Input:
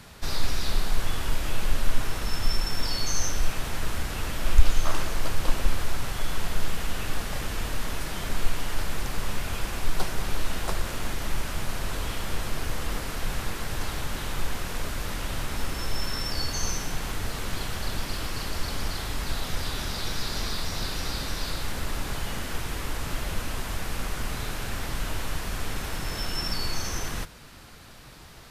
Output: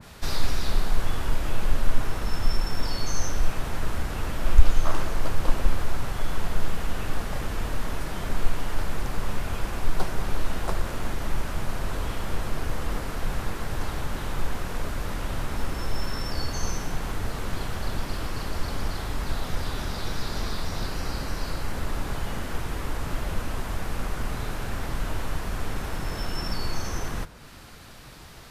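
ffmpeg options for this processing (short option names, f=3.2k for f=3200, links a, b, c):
-filter_complex "[0:a]asettb=1/sr,asplit=3[a][b][c];[a]atrim=end=20.864[d];[b]atrim=start=20.86:end=21.74,asetpts=PTS-STARTPTS,afade=t=in:d=0.004:c=qsin,afade=t=out:st=0.876:d=0.004:c=qsin,bandreject=f=3.6k:w=9.3[e];[c]atrim=start=21.736[f];[d][e]acrossfade=d=0.004:c1=hsin:c2=qsin[g];[g][f]acrossfade=d=0.004:c1=qsin:c2=hsin,adynamicequalizer=threshold=0.00282:dfrequency=1800:dqfactor=0.7:tfrequency=1800:tqfactor=0.7:attack=5:release=100:ratio=0.375:range=3.5:mode=cutabove:tftype=highshelf,volume=2dB"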